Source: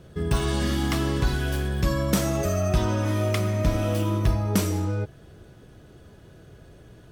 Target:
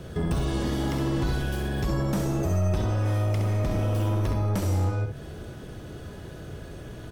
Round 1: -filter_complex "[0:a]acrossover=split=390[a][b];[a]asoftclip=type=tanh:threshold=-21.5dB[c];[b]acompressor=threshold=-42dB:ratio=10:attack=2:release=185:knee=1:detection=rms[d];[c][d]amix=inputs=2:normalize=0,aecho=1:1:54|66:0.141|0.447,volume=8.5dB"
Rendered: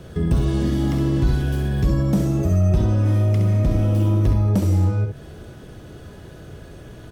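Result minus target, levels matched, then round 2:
soft clip: distortion -7 dB
-filter_complex "[0:a]acrossover=split=390[a][b];[a]asoftclip=type=tanh:threshold=-33.5dB[c];[b]acompressor=threshold=-42dB:ratio=10:attack=2:release=185:knee=1:detection=rms[d];[c][d]amix=inputs=2:normalize=0,aecho=1:1:54|66:0.141|0.447,volume=8.5dB"

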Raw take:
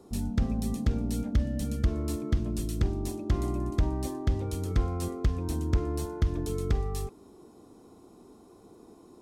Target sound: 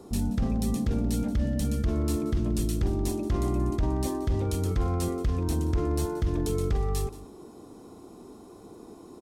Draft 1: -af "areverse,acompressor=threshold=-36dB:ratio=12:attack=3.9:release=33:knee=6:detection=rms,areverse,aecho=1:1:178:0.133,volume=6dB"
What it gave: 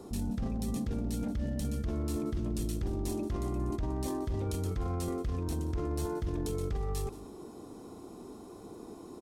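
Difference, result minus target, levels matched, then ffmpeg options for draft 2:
compressor: peak gain reduction +8 dB
-af "areverse,acompressor=threshold=-27dB:ratio=12:attack=3.9:release=33:knee=6:detection=rms,areverse,aecho=1:1:178:0.133,volume=6dB"

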